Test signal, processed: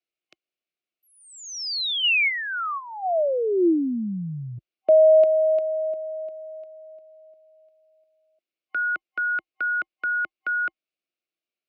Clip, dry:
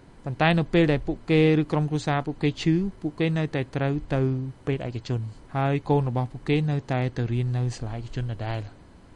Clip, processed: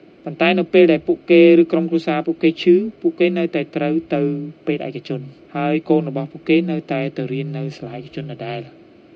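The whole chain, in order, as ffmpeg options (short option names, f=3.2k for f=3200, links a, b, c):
-af "superequalizer=9b=0.398:12b=2,afreqshift=29,highpass=200,equalizer=f=340:t=q:w=4:g=9,equalizer=f=630:t=q:w=4:g=5,equalizer=f=1k:t=q:w=4:g=-6,equalizer=f=1.7k:t=q:w=4:g=-5,lowpass=f=4.7k:w=0.5412,lowpass=f=4.7k:w=1.3066,volume=4.5dB"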